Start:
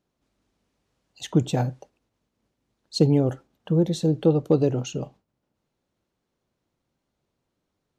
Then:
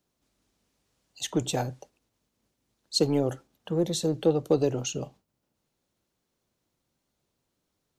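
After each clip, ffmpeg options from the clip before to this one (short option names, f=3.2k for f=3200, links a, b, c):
-filter_complex "[0:a]highshelf=f=4.1k:g=10,acrossover=split=260|3100[a][b][c];[a]asoftclip=type=tanh:threshold=-30.5dB[d];[d][b][c]amix=inputs=3:normalize=0,volume=-2dB"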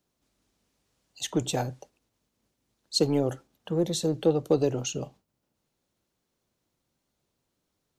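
-af anull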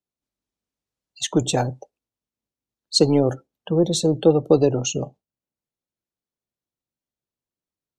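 -af "afftdn=nr=23:nf=-44,volume=7.5dB"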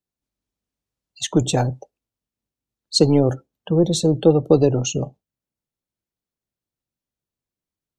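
-af "lowshelf=f=170:g=7"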